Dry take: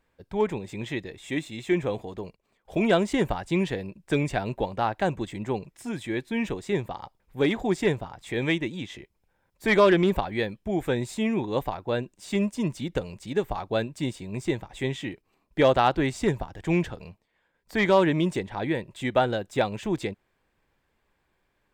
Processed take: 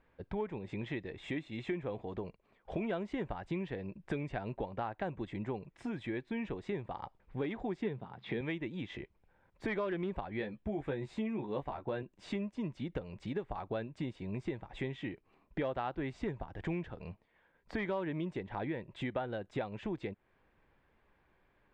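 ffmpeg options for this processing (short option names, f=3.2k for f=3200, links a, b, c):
-filter_complex "[0:a]asettb=1/sr,asplit=3[a][b][c];[a]atrim=end=7.824[d];[b]atrim=start=7.82:end=8.41,asetpts=PTS-STARTPTS,afade=t=in:d=0.004:c=qsin,afade=t=out:st=0.586:d=0.004:c=qsin,highpass=120,equalizer=f=130:t=q:w=4:g=8,equalizer=f=210:t=q:w=4:g=9,equalizer=f=420:t=q:w=4:g=5,equalizer=f=610:t=q:w=4:g=-3,equalizer=f=3.6k:t=q:w=4:g=4,lowpass=f=4.8k:w=0.5412,lowpass=f=4.8k:w=1.3066[e];[c]atrim=start=8.406[f];[d][e]acrossfade=d=0.004:c1=hsin:c2=qsin[g];[g][f]acrossfade=d=0.004:c1=qsin:c2=hsin,asettb=1/sr,asplit=3[h][i][j];[h]atrim=end=10.394[k];[i]atrim=start=10.39:end=12.03,asetpts=PTS-STARTPTS,afade=t=in:d=0.004:c=qsin,afade=t=out:st=1.636:d=0.004:c=qsin,asplit=2[l][m];[m]adelay=14,volume=-5dB[n];[l][n]amix=inputs=2:normalize=0,atrim=end_sample=72324[o];[j]atrim=start=12.026[p];[k][o]acrossfade=d=0.004:c1=hsin:c2=qsin[q];[q][p]acrossfade=d=0.004:c1=qsin:c2=hsin,lowpass=2.6k,acompressor=threshold=-39dB:ratio=4,volume=2dB"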